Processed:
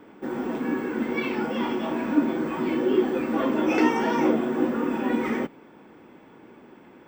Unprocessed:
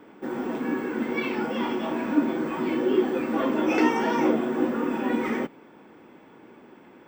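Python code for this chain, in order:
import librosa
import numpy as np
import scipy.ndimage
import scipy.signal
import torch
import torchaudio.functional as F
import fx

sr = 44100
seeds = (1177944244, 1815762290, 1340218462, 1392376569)

y = fx.low_shelf(x, sr, hz=120.0, db=5.5)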